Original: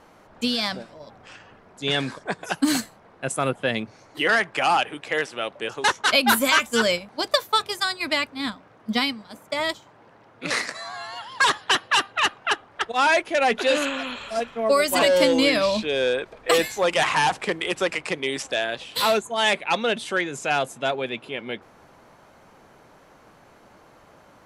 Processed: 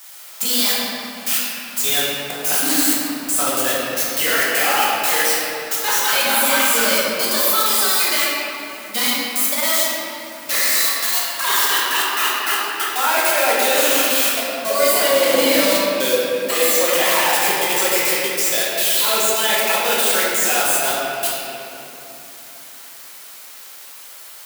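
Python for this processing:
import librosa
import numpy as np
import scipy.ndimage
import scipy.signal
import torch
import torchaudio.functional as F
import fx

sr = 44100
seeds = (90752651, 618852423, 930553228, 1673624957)

y = x + 0.5 * 10.0 ** (-12.0 / 20.0) * np.diff(np.sign(x), prepend=np.sign(x[:1]))
y = scipy.signal.sosfilt(scipy.signal.butter(4, 130.0, 'highpass', fs=sr, output='sos'), y)
y = fx.low_shelf(y, sr, hz=350.0, db=-8.0)
y = fx.echo_thinned(y, sr, ms=68, feedback_pct=74, hz=290.0, wet_db=-15.0)
y = fx.level_steps(y, sr, step_db=22)
y = fx.high_shelf(y, sr, hz=10000.0, db=3.5)
y = fx.room_shoebox(y, sr, seeds[0], volume_m3=170.0, walls='hard', distance_m=1.1)
y = y * librosa.db_to_amplitude(-1.5)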